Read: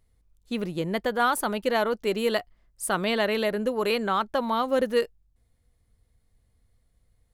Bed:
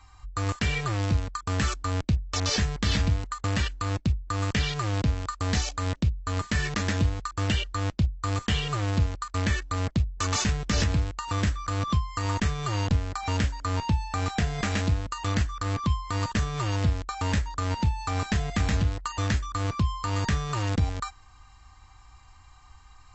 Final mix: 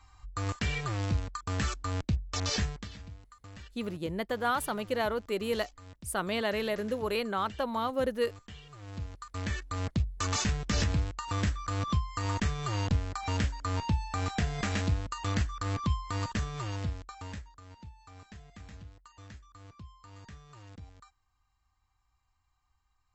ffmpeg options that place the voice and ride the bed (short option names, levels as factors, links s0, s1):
-filter_complex "[0:a]adelay=3250,volume=0.501[s0];[1:a]volume=4.47,afade=t=out:st=2.64:d=0.25:silence=0.141254,afade=t=in:st=8.76:d=1.3:silence=0.125893,afade=t=out:st=16:d=1.6:silence=0.105925[s1];[s0][s1]amix=inputs=2:normalize=0"